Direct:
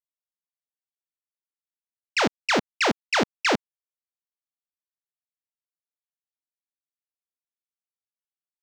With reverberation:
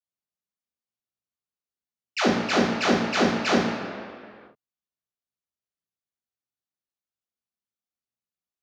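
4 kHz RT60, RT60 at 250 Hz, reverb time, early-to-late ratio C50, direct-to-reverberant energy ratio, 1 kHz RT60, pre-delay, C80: 1.5 s, 1.7 s, 2.1 s, 1.0 dB, -9.0 dB, 2.1 s, 3 ms, 3.5 dB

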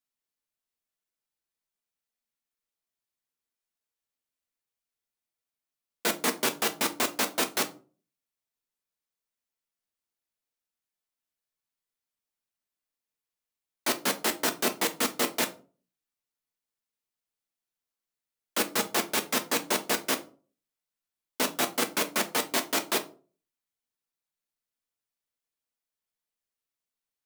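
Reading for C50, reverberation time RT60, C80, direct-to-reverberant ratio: 16.5 dB, 0.40 s, 22.5 dB, 5.5 dB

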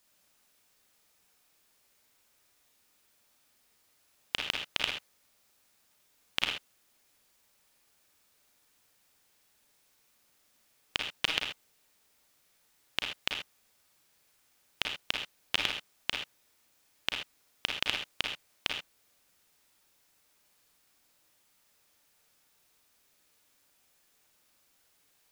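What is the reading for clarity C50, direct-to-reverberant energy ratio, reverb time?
2.0 dB, 0.5 dB, no single decay rate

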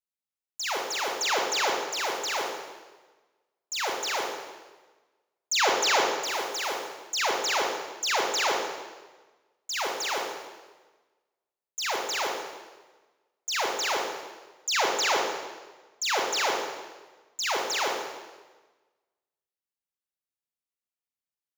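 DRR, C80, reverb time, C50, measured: -1.0 dB, 3.5 dB, 1.3 s, 1.0 dB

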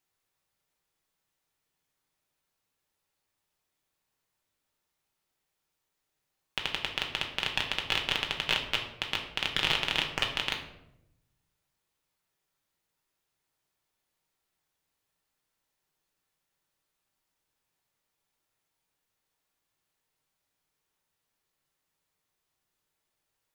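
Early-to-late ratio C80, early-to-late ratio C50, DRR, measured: 10.5 dB, 7.5 dB, 1.0 dB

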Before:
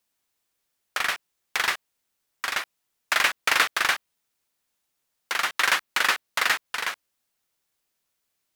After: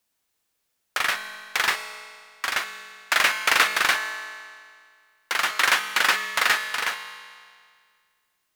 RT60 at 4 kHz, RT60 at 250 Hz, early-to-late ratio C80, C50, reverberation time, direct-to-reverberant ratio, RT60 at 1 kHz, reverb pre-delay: 1.9 s, 2.0 s, 9.5 dB, 8.0 dB, 2.0 s, 6.5 dB, 2.0 s, 5 ms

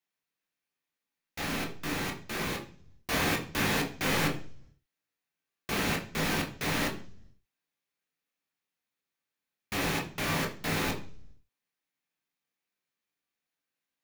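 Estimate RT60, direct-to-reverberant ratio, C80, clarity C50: 0.50 s, 0.5 dB, 15.5 dB, 11.5 dB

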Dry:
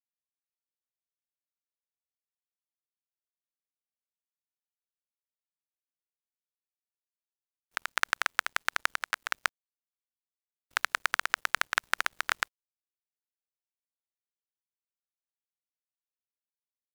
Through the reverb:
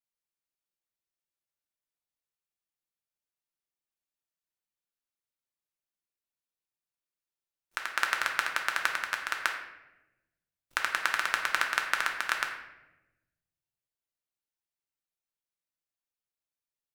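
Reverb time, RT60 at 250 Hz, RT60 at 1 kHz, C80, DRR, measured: 1.0 s, 1.5 s, 0.85 s, 8.0 dB, 1.0 dB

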